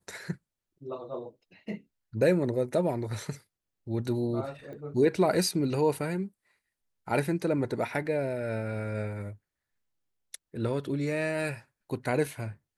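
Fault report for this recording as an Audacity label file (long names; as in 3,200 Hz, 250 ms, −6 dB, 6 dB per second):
4.730000	4.730000	click −35 dBFS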